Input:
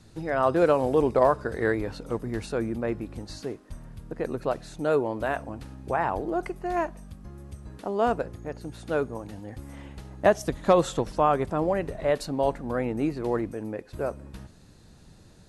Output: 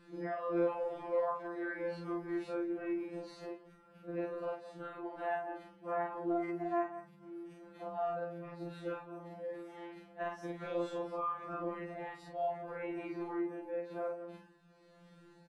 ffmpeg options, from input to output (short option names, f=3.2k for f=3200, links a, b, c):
-filter_complex "[0:a]afftfilt=real='re':imag='-im':win_size=4096:overlap=0.75,acrossover=split=180 3100:gain=0.112 1 0.158[a][b][c];[a][b][c]amix=inputs=3:normalize=0,bandreject=f=6.7k:w=17,tremolo=f=0.92:d=0.51,acrossover=split=430|1000[d][e][f];[d]asoftclip=type=tanh:threshold=-39.5dB[g];[g][e][f]amix=inputs=3:normalize=0,asplit=2[h][i];[i]adelay=170,highpass=300,lowpass=3.4k,asoftclip=type=hard:threshold=-22.5dB,volume=-17dB[j];[h][j]amix=inputs=2:normalize=0,acompressor=threshold=-41dB:ratio=2.5,afftfilt=real='re*2.83*eq(mod(b,8),0)':imag='im*2.83*eq(mod(b,8),0)':win_size=2048:overlap=0.75,volume=5.5dB"